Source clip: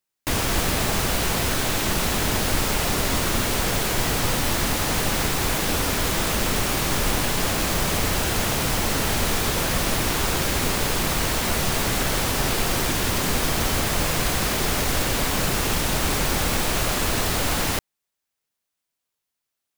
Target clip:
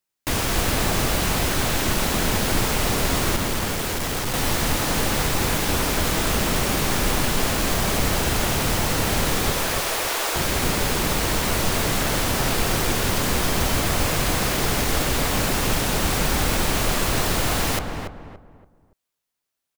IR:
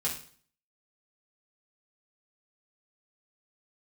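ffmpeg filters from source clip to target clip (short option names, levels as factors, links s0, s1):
-filter_complex "[0:a]asettb=1/sr,asplit=3[s0][s1][s2];[s0]atrim=end=3.364[s3];[s1]atrim=start=3.36:end=4.34,asetpts=PTS-STARTPTS,afade=t=in:d=0.004:c=qsin,afade=t=out:st=0.976:d=0.004:c=qsin,volume=15,asoftclip=hard,volume=0.0668[s4];[s2]atrim=start=4.336[s5];[s3][s4]acrossfade=d=0.004:c1=hsin:c2=qsin[s6];[s6][s5]acrossfade=d=0.004:c1=qsin:c2=hsin,asettb=1/sr,asplit=3[s7][s8][s9];[s7]atrim=end=9.524[s10];[s8]atrim=start=9.52:end=10.36,asetpts=PTS-STARTPTS,afade=t=in:d=0.004:c=qsin,afade=t=out:st=0.836:d=0.004:c=qsin,highpass=f=400:w=0.5412,highpass=f=400:w=1.3066[s11];[s9]atrim=start=10.356[s12];[s10][s11]acrossfade=d=0.004:c1=hsin:c2=qsin[s13];[s13][s12]acrossfade=d=0.004:c1=qsin:c2=hsin,asplit=2[s14][s15];[s15]adelay=285,lowpass=f=1400:p=1,volume=0.631,asplit=2[s16][s17];[s17]adelay=285,lowpass=f=1400:p=1,volume=0.35,asplit=2[s18][s19];[s19]adelay=285,lowpass=f=1400:p=1,volume=0.35,asplit=2[s20][s21];[s21]adelay=285,lowpass=f=1400:p=1,volume=0.35[s22];[s16][s18][s20][s22]amix=inputs=4:normalize=0[s23];[s14][s23]amix=inputs=2:normalize=0"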